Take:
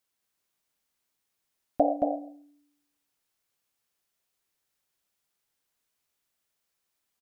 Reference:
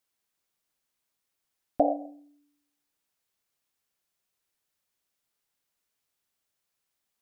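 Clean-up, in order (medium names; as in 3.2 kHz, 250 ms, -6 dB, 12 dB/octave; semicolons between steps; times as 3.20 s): inverse comb 224 ms -4 dB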